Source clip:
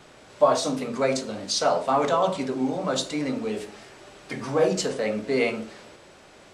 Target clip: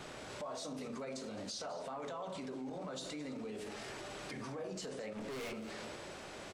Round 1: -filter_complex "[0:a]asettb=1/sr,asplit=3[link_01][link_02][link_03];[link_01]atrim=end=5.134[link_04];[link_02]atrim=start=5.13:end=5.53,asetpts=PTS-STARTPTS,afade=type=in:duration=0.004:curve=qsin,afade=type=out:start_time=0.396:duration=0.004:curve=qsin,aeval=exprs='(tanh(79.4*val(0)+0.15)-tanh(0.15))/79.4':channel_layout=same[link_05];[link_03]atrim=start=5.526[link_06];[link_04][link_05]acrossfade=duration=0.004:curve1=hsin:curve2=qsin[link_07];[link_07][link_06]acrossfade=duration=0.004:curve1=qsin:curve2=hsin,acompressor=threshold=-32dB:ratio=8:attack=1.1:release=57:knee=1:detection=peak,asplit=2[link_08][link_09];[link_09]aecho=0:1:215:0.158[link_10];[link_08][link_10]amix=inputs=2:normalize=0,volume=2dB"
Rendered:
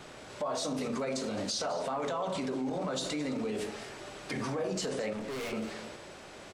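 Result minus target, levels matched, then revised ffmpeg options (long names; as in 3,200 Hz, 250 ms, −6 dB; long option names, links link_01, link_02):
downward compressor: peak gain reduction −9.5 dB
-filter_complex "[0:a]asettb=1/sr,asplit=3[link_01][link_02][link_03];[link_01]atrim=end=5.134[link_04];[link_02]atrim=start=5.13:end=5.53,asetpts=PTS-STARTPTS,afade=type=in:duration=0.004:curve=qsin,afade=type=out:start_time=0.396:duration=0.004:curve=qsin,aeval=exprs='(tanh(79.4*val(0)+0.15)-tanh(0.15))/79.4':channel_layout=same[link_05];[link_03]atrim=start=5.526[link_06];[link_04][link_05]acrossfade=duration=0.004:curve1=hsin:curve2=qsin[link_07];[link_07][link_06]acrossfade=duration=0.004:curve1=qsin:curve2=hsin,acompressor=threshold=-43dB:ratio=8:attack=1.1:release=57:knee=1:detection=peak,asplit=2[link_08][link_09];[link_09]aecho=0:1:215:0.158[link_10];[link_08][link_10]amix=inputs=2:normalize=0,volume=2dB"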